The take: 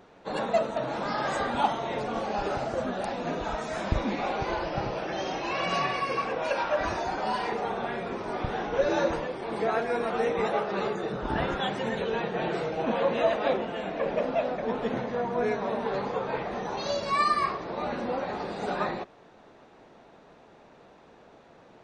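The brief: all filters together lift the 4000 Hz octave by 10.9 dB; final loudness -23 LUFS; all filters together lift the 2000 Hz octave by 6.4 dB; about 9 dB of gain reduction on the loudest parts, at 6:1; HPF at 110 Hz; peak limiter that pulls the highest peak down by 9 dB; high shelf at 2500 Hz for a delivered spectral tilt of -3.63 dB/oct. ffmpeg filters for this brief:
-af "highpass=110,equalizer=f=2k:t=o:g=4,highshelf=f=2.5k:g=4.5,equalizer=f=4k:t=o:g=8.5,acompressor=threshold=-27dB:ratio=6,volume=10.5dB,alimiter=limit=-14.5dB:level=0:latency=1"

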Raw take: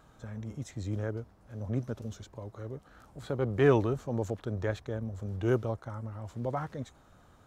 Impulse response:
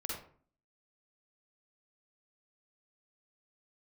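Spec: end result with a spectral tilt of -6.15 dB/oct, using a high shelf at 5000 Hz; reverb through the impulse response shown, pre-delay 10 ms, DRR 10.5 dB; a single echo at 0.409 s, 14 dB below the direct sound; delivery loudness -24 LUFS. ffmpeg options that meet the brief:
-filter_complex "[0:a]highshelf=f=5k:g=6.5,aecho=1:1:409:0.2,asplit=2[a][b];[1:a]atrim=start_sample=2205,adelay=10[c];[b][c]afir=irnorm=-1:irlink=0,volume=-11.5dB[d];[a][d]amix=inputs=2:normalize=0,volume=8.5dB"

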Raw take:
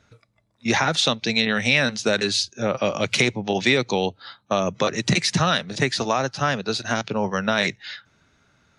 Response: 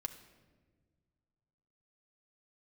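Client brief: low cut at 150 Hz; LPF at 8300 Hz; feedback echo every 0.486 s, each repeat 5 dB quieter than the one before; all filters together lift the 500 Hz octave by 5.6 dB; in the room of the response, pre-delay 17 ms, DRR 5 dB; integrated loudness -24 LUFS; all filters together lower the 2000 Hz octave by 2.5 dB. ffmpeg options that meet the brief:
-filter_complex "[0:a]highpass=150,lowpass=8.3k,equalizer=f=500:t=o:g=7,equalizer=f=2k:t=o:g=-3.5,aecho=1:1:486|972|1458|1944|2430|2916|3402:0.562|0.315|0.176|0.0988|0.0553|0.031|0.0173,asplit=2[a][b];[1:a]atrim=start_sample=2205,adelay=17[c];[b][c]afir=irnorm=-1:irlink=0,volume=-3.5dB[d];[a][d]amix=inputs=2:normalize=0,volume=-5.5dB"

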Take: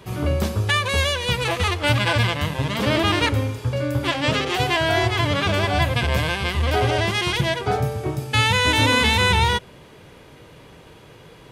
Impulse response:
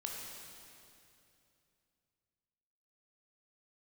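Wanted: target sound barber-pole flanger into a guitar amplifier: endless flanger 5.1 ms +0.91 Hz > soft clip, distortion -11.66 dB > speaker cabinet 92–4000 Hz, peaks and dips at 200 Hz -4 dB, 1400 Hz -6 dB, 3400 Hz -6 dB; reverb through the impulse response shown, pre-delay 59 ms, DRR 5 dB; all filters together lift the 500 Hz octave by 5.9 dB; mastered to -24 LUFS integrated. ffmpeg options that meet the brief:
-filter_complex "[0:a]equalizer=f=500:t=o:g=7.5,asplit=2[a][b];[1:a]atrim=start_sample=2205,adelay=59[c];[b][c]afir=irnorm=-1:irlink=0,volume=-5dB[d];[a][d]amix=inputs=2:normalize=0,asplit=2[e][f];[f]adelay=5.1,afreqshift=0.91[g];[e][g]amix=inputs=2:normalize=1,asoftclip=threshold=-18.5dB,highpass=92,equalizer=f=200:t=q:w=4:g=-4,equalizer=f=1.4k:t=q:w=4:g=-6,equalizer=f=3.4k:t=q:w=4:g=-6,lowpass=f=4k:w=0.5412,lowpass=f=4k:w=1.3066,volume=1.5dB"

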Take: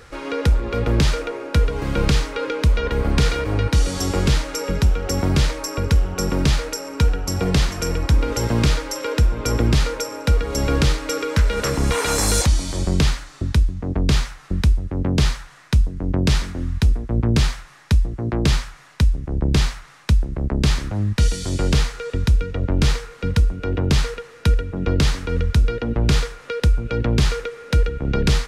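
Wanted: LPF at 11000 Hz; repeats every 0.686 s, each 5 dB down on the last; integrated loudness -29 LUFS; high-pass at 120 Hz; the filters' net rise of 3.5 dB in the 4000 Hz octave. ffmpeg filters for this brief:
-af "highpass=120,lowpass=11k,equalizer=f=4k:t=o:g=4.5,aecho=1:1:686|1372|2058|2744|3430|4116|4802:0.562|0.315|0.176|0.0988|0.0553|0.031|0.0173,volume=-7dB"

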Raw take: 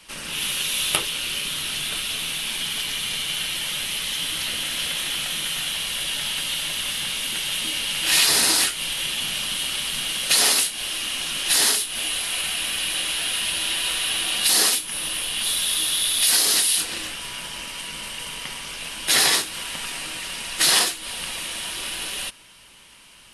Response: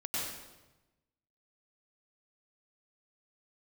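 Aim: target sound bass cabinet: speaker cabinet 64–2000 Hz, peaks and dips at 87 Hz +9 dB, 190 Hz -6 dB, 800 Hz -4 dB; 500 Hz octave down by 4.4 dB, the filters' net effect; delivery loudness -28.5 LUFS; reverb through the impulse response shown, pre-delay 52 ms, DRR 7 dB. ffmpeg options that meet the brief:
-filter_complex "[0:a]equalizer=f=500:t=o:g=-5,asplit=2[a][b];[1:a]atrim=start_sample=2205,adelay=52[c];[b][c]afir=irnorm=-1:irlink=0,volume=-11.5dB[d];[a][d]amix=inputs=2:normalize=0,highpass=f=64:w=0.5412,highpass=f=64:w=1.3066,equalizer=f=87:t=q:w=4:g=9,equalizer=f=190:t=q:w=4:g=-6,equalizer=f=800:t=q:w=4:g=-4,lowpass=f=2k:w=0.5412,lowpass=f=2k:w=1.3066,volume=5.5dB"

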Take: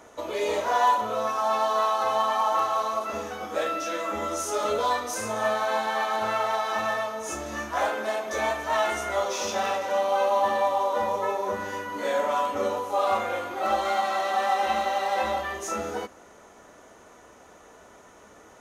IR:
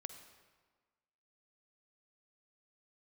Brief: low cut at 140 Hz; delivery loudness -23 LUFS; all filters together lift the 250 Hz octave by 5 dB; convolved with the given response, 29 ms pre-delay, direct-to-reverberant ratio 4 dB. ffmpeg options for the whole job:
-filter_complex "[0:a]highpass=140,equalizer=f=250:t=o:g=7,asplit=2[a][b];[1:a]atrim=start_sample=2205,adelay=29[c];[b][c]afir=irnorm=-1:irlink=0,volume=-0.5dB[d];[a][d]amix=inputs=2:normalize=0,volume=1dB"

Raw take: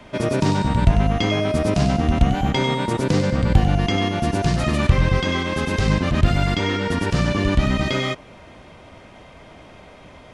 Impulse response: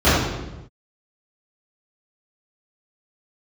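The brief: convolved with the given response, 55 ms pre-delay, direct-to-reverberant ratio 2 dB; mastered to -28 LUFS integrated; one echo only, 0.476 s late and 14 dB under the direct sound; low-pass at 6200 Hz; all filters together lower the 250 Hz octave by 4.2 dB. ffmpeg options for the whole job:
-filter_complex "[0:a]lowpass=6.2k,equalizer=f=250:t=o:g=-6,aecho=1:1:476:0.2,asplit=2[a][b];[1:a]atrim=start_sample=2205,adelay=55[c];[b][c]afir=irnorm=-1:irlink=0,volume=-27.5dB[d];[a][d]amix=inputs=2:normalize=0,volume=-15dB"

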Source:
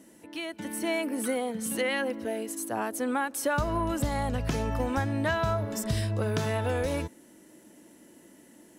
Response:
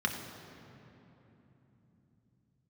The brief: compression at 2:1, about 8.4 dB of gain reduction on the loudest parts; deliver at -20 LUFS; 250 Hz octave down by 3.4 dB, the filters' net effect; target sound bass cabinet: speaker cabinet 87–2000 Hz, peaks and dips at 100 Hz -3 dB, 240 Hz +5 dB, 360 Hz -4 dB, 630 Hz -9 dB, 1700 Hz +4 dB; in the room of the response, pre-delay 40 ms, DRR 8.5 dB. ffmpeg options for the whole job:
-filter_complex "[0:a]equalizer=f=250:t=o:g=-6,acompressor=threshold=-40dB:ratio=2,asplit=2[a][b];[1:a]atrim=start_sample=2205,adelay=40[c];[b][c]afir=irnorm=-1:irlink=0,volume=-16dB[d];[a][d]amix=inputs=2:normalize=0,highpass=f=87:w=0.5412,highpass=f=87:w=1.3066,equalizer=f=100:t=q:w=4:g=-3,equalizer=f=240:t=q:w=4:g=5,equalizer=f=360:t=q:w=4:g=-4,equalizer=f=630:t=q:w=4:g=-9,equalizer=f=1.7k:t=q:w=4:g=4,lowpass=f=2k:w=0.5412,lowpass=f=2k:w=1.3066,volume=20dB"

